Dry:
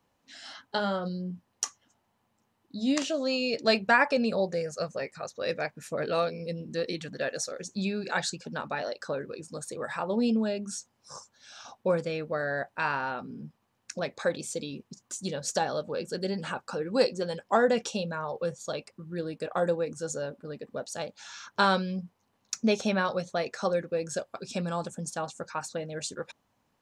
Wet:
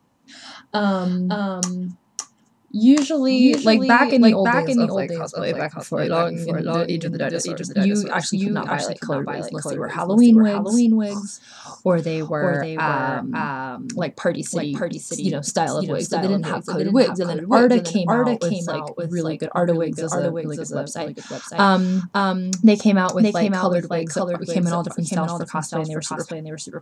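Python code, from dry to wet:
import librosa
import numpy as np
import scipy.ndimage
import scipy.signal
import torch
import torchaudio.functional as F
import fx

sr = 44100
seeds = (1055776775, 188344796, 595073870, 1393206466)

p1 = fx.graphic_eq(x, sr, hz=(125, 250, 1000, 8000), db=(8, 10, 5, 4))
p2 = p1 + fx.echo_single(p1, sr, ms=561, db=-4.5, dry=0)
y = p2 * 10.0 ** (3.5 / 20.0)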